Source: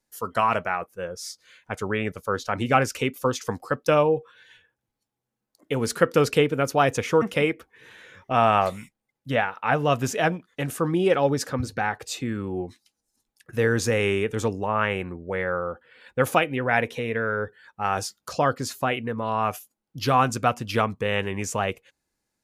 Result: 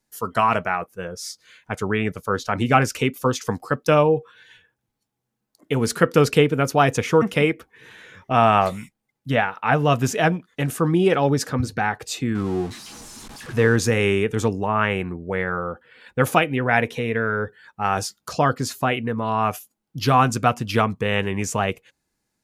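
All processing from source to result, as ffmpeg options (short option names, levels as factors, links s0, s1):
-filter_complex "[0:a]asettb=1/sr,asplit=3[s0][s1][s2];[s0]atrim=end=12.354[s3];[s1]atrim=start=12.35:end=13.76,asetpts=PTS-STARTPTS,afade=t=in:d=0.004:c=qsin,afade=t=out:st=1.406:d=0.004:c=qsin,aeval=exprs='val(0)+0.5*0.015*sgn(val(0))':c=same,lowpass=10000,equalizer=f=1100:w=2.3:g=4[s4];[s2]atrim=start=13.756[s5];[s3][s4]acrossfade=d=0.004:c1=hsin:c2=qsin[s6];[s6][s5]acrossfade=d=0.004:c1=qsin:c2=hsin,equalizer=f=160:w=1.1:g=3.5,bandreject=f=540:w=12,volume=1.41"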